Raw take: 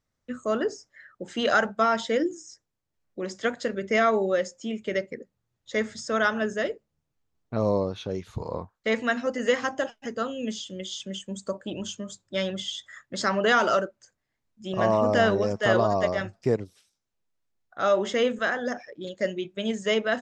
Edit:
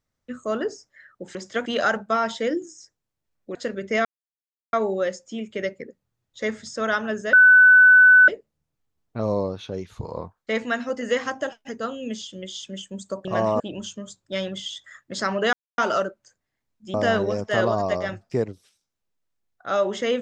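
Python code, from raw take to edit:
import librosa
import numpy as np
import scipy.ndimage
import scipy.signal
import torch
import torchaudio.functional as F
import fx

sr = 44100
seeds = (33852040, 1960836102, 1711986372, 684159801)

y = fx.edit(x, sr, fx.move(start_s=3.24, length_s=0.31, to_s=1.35),
    fx.insert_silence(at_s=4.05, length_s=0.68),
    fx.insert_tone(at_s=6.65, length_s=0.95, hz=1500.0, db=-8.5),
    fx.insert_silence(at_s=13.55, length_s=0.25),
    fx.move(start_s=14.71, length_s=0.35, to_s=11.62), tone=tone)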